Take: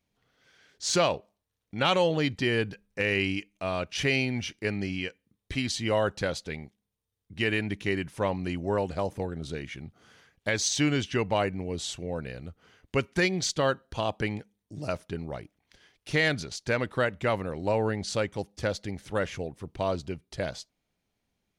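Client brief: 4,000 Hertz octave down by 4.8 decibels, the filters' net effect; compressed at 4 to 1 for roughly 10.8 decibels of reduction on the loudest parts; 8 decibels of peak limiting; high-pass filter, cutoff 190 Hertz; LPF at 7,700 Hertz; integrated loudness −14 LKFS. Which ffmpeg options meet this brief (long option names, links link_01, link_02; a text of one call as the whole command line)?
ffmpeg -i in.wav -af "highpass=190,lowpass=7700,equalizer=frequency=4000:width_type=o:gain=-6.5,acompressor=threshold=-34dB:ratio=4,volume=26.5dB,alimiter=limit=-1dB:level=0:latency=1" out.wav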